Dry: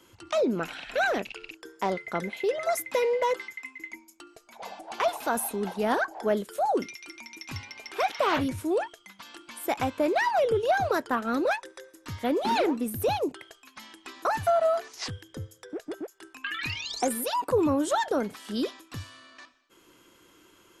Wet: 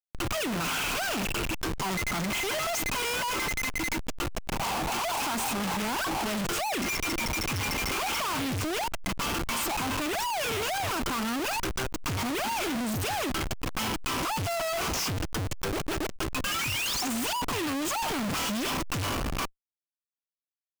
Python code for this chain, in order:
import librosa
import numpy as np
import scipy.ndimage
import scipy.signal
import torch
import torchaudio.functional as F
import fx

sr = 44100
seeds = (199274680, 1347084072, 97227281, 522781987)

p1 = fx.fuzz(x, sr, gain_db=43.0, gate_db=-48.0)
p2 = x + (p1 * 10.0 ** (-3.0 / 20.0))
p3 = fx.fixed_phaser(p2, sr, hz=2700.0, stages=8)
p4 = fx.schmitt(p3, sr, flips_db=-34.5)
p5 = fx.pre_swell(p4, sr, db_per_s=72.0)
y = p5 * 10.0 ** (-7.5 / 20.0)